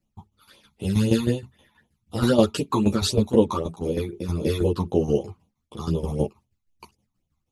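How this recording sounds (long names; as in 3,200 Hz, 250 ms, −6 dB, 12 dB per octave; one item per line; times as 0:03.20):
phaser sweep stages 12, 3.9 Hz, lowest notch 490–1,700 Hz
tremolo saw down 6.3 Hz, depth 75%
a shimmering, thickened sound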